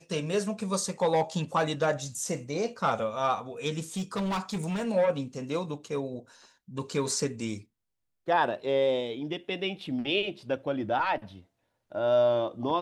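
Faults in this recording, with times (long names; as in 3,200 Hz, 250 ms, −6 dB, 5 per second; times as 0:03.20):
0:03.96–0:04.87: clipping −27 dBFS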